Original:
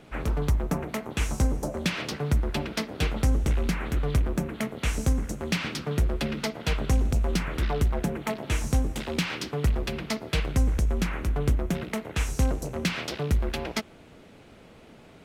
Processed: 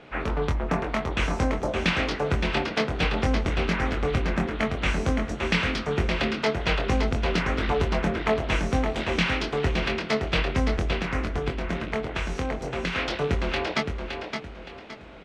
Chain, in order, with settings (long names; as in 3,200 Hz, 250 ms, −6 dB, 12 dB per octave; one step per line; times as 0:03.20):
low-pass filter 3,400 Hz 12 dB per octave
low-shelf EQ 320 Hz −10 dB
0:10.92–0:12.95: downward compressor, threshold −33 dBFS, peak gain reduction 7 dB
double-tracking delay 23 ms −5 dB
repeating echo 567 ms, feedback 33%, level −6 dB
level +6 dB